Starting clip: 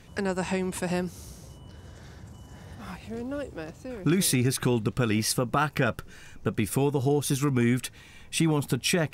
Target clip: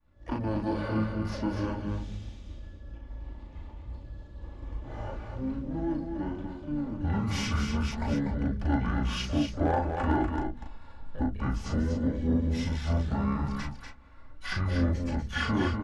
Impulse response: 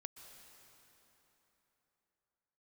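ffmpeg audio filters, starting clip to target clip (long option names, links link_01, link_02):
-filter_complex "[0:a]lowpass=frequency=2000:poles=1,bandreject=frequency=60:width_type=h:width=6,bandreject=frequency=120:width_type=h:width=6,bandreject=frequency=180:width_type=h:width=6,bandreject=frequency=240:width_type=h:width=6,bandreject=frequency=300:width_type=h:width=6,bandreject=frequency=360:width_type=h:width=6,bandreject=frequency=420:width_type=h:width=6,agate=range=-33dB:threshold=-41dB:ratio=3:detection=peak,lowshelf=frequency=260:gain=5,aecho=1:1:2:0.66,asplit=2[link_01][link_02];[link_02]acompressor=threshold=-36dB:ratio=5,volume=1dB[link_03];[link_01][link_03]amix=inputs=2:normalize=0,flanger=delay=19.5:depth=3.1:speed=1.3,acrossover=split=470[link_04][link_05];[link_04]asoftclip=type=tanh:threshold=-25dB[link_06];[link_06][link_05]amix=inputs=2:normalize=0,asplit=4[link_07][link_08][link_09][link_10];[link_08]asetrate=22050,aresample=44100,atempo=2,volume=-16dB[link_11];[link_09]asetrate=35002,aresample=44100,atempo=1.25992,volume=-12dB[link_12];[link_10]asetrate=88200,aresample=44100,atempo=0.5,volume=-16dB[link_13];[link_07][link_11][link_12][link_13]amix=inputs=4:normalize=0,asoftclip=type=hard:threshold=-16.5dB,aecho=1:1:140:0.501,asetrate=25442,aresample=44100,volume=-1.5dB"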